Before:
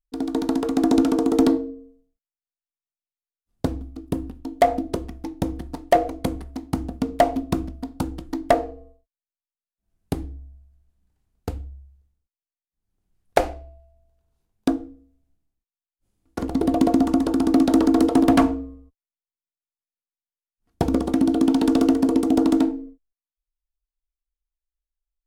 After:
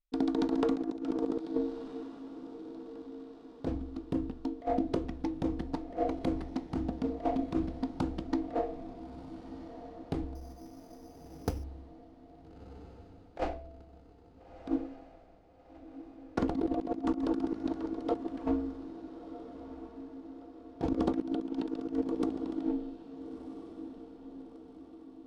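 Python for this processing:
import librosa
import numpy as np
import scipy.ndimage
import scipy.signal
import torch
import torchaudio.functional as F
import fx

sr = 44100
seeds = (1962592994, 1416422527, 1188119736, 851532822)

y = scipy.signal.sosfilt(scipy.signal.butter(2, 4500.0, 'lowpass', fs=sr, output='sos'), x)
y = fx.peak_eq(y, sr, hz=60.0, db=-6.0, octaves=0.78)
y = fx.over_compress(y, sr, threshold_db=-24.0, ratio=-0.5)
y = fx.echo_diffused(y, sr, ms=1339, feedback_pct=52, wet_db=-12.0)
y = fx.resample_bad(y, sr, factor=8, down='none', up='hold', at=(10.35, 11.64))
y = y * 10.0 ** (-7.0 / 20.0)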